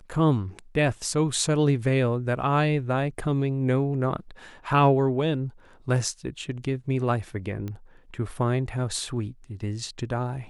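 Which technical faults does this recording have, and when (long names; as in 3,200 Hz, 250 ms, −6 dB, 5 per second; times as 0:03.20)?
0:07.68: click −22 dBFS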